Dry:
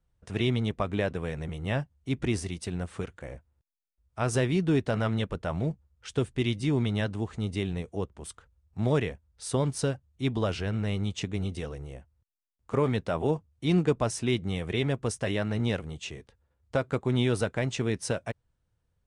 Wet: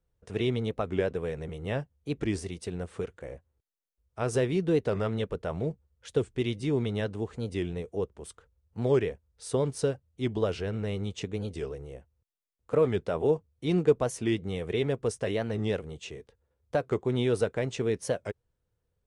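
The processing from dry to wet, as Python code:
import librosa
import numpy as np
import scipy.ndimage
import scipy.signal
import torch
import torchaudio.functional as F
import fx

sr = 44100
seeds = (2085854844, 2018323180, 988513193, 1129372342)

y = fx.peak_eq(x, sr, hz=450.0, db=9.0, octaves=0.62)
y = fx.record_warp(y, sr, rpm=45.0, depth_cents=160.0)
y = y * librosa.db_to_amplitude(-4.0)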